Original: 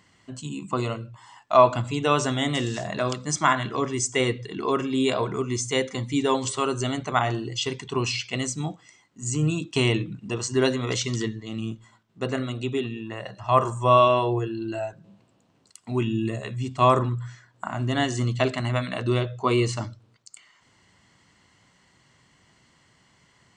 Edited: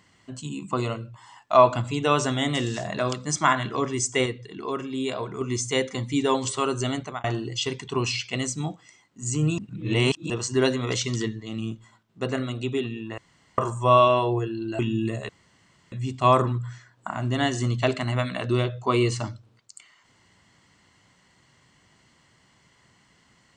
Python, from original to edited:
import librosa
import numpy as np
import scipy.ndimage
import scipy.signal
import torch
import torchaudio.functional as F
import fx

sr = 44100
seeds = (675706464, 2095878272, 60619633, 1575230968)

y = fx.edit(x, sr, fx.clip_gain(start_s=4.26, length_s=1.15, db=-5.5),
    fx.fade_out_span(start_s=6.97, length_s=0.27),
    fx.reverse_span(start_s=9.58, length_s=0.72),
    fx.room_tone_fill(start_s=13.18, length_s=0.4),
    fx.cut(start_s=14.79, length_s=1.2),
    fx.insert_room_tone(at_s=16.49, length_s=0.63), tone=tone)